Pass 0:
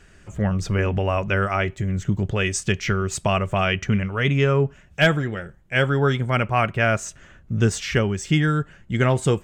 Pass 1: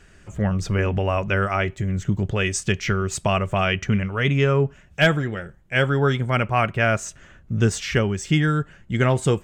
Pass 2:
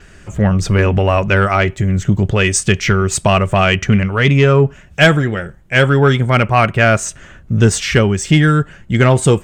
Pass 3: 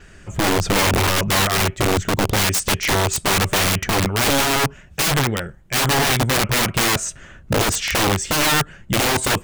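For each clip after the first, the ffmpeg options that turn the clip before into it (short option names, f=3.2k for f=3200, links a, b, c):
-af anull
-af "adynamicequalizer=threshold=0.00224:dfrequency=8700:dqfactor=5.9:tfrequency=8700:tqfactor=5.9:attack=5:release=100:ratio=0.375:range=3:mode=boostabove:tftype=bell,acontrast=89,volume=2dB"
-af "aeval=exprs='(mod(3.16*val(0)+1,2)-1)/3.16':c=same,volume=-3dB"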